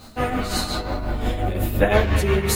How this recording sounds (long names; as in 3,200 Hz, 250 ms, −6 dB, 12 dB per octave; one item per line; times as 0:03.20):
a quantiser's noise floor 10 bits, dither triangular
tremolo triangle 5.7 Hz, depth 65%
a shimmering, thickened sound